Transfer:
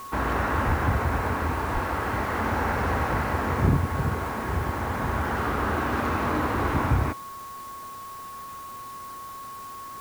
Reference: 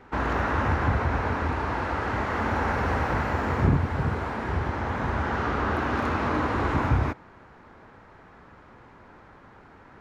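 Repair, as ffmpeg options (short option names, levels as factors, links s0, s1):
-filter_complex "[0:a]bandreject=f=1100:w=30,asplit=3[s0][s1][s2];[s0]afade=t=out:st=0.66:d=0.02[s3];[s1]highpass=f=140:w=0.5412,highpass=f=140:w=1.3066,afade=t=in:st=0.66:d=0.02,afade=t=out:st=0.78:d=0.02[s4];[s2]afade=t=in:st=0.78:d=0.02[s5];[s3][s4][s5]amix=inputs=3:normalize=0,asplit=3[s6][s7][s8];[s6]afade=t=out:st=1.73:d=0.02[s9];[s7]highpass=f=140:w=0.5412,highpass=f=140:w=1.3066,afade=t=in:st=1.73:d=0.02,afade=t=out:st=1.85:d=0.02[s10];[s8]afade=t=in:st=1.85:d=0.02[s11];[s9][s10][s11]amix=inputs=3:normalize=0,afwtdn=0.0035"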